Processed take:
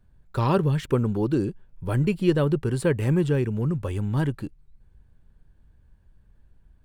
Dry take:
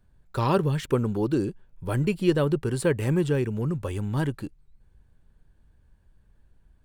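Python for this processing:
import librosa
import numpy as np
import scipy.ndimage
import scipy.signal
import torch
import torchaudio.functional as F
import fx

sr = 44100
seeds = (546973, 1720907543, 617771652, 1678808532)

y = fx.bass_treble(x, sr, bass_db=3, treble_db=-3)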